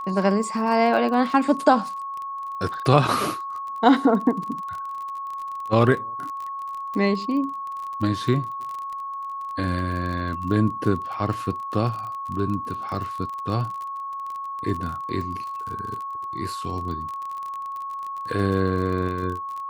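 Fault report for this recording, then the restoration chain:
crackle 30/s -30 dBFS
tone 1100 Hz -29 dBFS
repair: de-click; notch 1100 Hz, Q 30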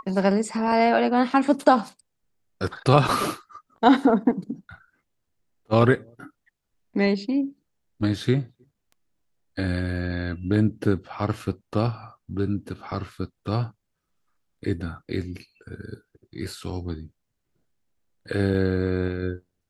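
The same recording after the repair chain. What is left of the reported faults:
none

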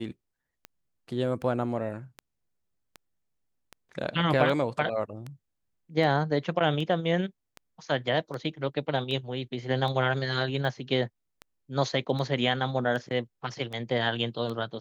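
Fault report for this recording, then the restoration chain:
tick 78 rpm -24 dBFS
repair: de-click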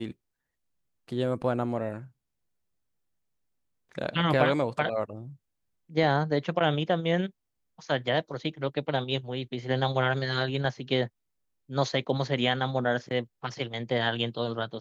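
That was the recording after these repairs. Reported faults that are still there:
none

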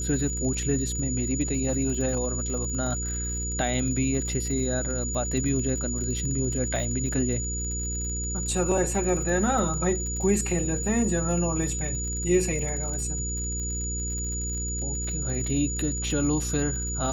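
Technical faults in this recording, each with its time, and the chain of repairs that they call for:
crackle 54/s -33 dBFS
hum 60 Hz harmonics 8 -32 dBFS
tone 6900 Hz -31 dBFS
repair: de-click; de-hum 60 Hz, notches 8; notch 6900 Hz, Q 30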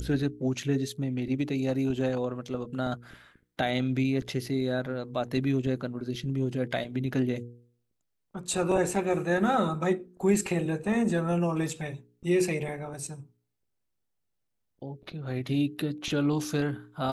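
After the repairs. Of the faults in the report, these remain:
none

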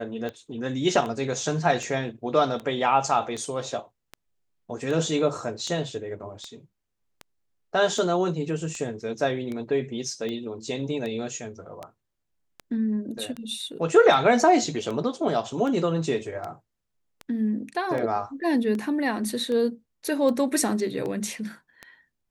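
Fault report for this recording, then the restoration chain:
tick 78 rpm -21 dBFS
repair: de-click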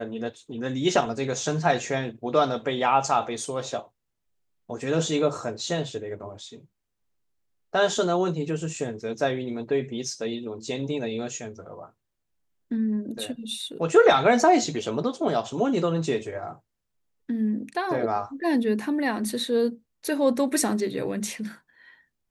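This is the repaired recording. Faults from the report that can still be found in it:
none

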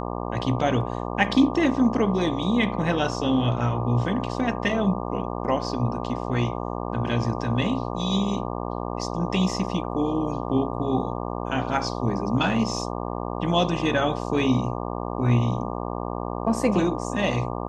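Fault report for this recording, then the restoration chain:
buzz 60 Hz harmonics 20 -30 dBFS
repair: de-hum 60 Hz, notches 20

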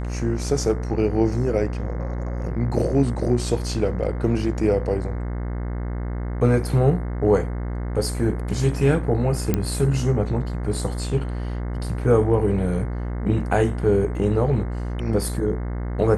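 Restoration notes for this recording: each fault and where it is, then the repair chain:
buzz 60 Hz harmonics 36 -27 dBFS
9.54 pop -7 dBFS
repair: de-click; de-hum 60 Hz, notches 36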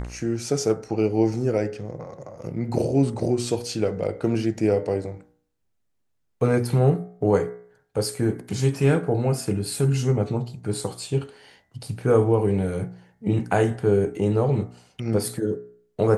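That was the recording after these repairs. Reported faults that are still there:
none

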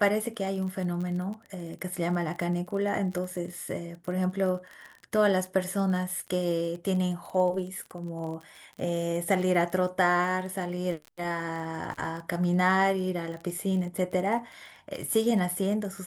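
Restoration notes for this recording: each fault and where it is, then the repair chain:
crackle 29/s -35 dBFS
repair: de-click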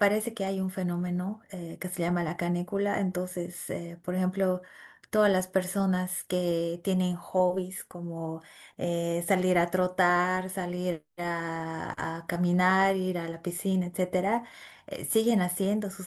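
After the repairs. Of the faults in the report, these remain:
none

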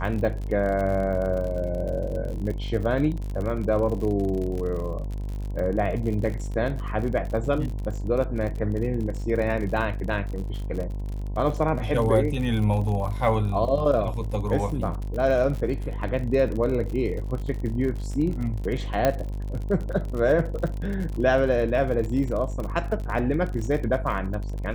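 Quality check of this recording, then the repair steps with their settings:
buzz 50 Hz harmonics 21 -30 dBFS
crackle 52/s -31 dBFS
19.05 pop -8 dBFS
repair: de-click; de-hum 50 Hz, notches 21

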